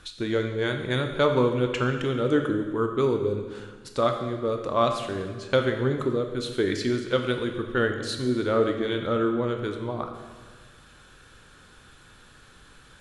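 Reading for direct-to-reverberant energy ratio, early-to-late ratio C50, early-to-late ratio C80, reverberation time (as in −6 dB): 4.5 dB, 6.5 dB, 8.0 dB, 1.5 s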